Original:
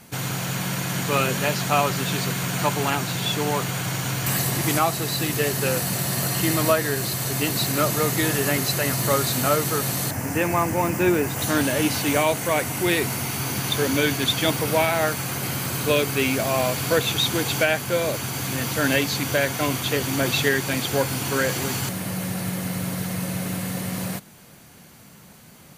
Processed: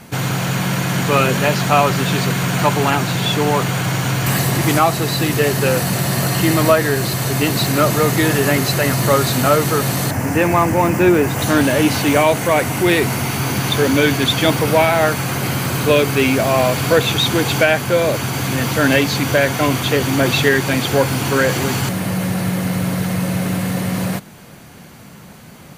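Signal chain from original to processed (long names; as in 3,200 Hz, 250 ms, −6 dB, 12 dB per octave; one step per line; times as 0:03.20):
high-shelf EQ 4,100 Hz −7.5 dB
in parallel at −6 dB: soft clipping −25 dBFS, distortion −8 dB
on the sum: level +6 dB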